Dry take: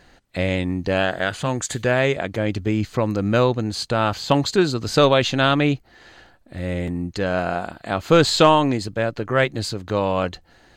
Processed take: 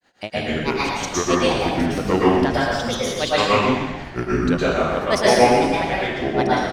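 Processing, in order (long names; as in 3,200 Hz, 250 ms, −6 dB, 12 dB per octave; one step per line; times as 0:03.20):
high-pass filter 320 Hz 6 dB per octave
automatic gain control gain up to 12 dB
tempo change 1.6×
granular cloud 151 ms, grains 6.3 per second, spray 15 ms, pitch spread up and down by 7 semitones
on a send: echo with shifted repeats 120 ms, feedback 53%, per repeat −110 Hz, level −8.5 dB
on the sum: dense smooth reverb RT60 1 s, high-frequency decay 0.9×, pre-delay 100 ms, DRR −7 dB
level −4.5 dB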